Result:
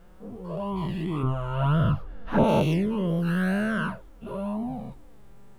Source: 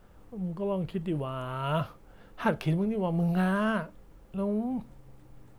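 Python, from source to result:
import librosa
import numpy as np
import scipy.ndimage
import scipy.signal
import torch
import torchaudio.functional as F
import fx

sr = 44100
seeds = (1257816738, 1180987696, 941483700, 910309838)

y = fx.spec_dilate(x, sr, span_ms=240)
y = fx.env_flanger(y, sr, rest_ms=6.3, full_db=-18.0)
y = fx.tilt_eq(y, sr, slope=-2.5, at=(1.23, 2.44))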